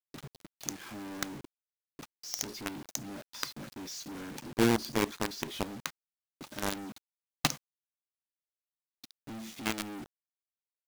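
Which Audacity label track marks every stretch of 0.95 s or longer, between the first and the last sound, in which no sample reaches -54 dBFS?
7.570000	9.040000	silence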